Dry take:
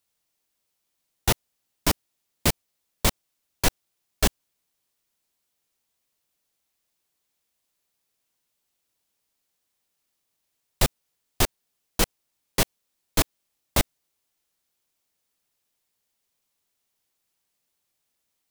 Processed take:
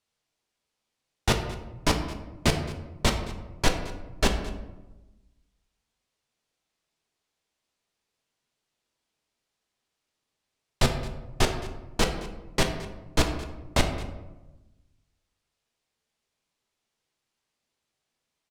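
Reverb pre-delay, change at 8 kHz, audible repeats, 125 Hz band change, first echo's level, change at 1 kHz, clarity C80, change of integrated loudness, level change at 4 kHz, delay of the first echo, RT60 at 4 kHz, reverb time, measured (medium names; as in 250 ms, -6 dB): 3 ms, -5.5 dB, 1, +2.0 dB, -18.5 dB, +1.0 dB, 9.5 dB, -2.0 dB, -1.0 dB, 218 ms, 0.65 s, 1.1 s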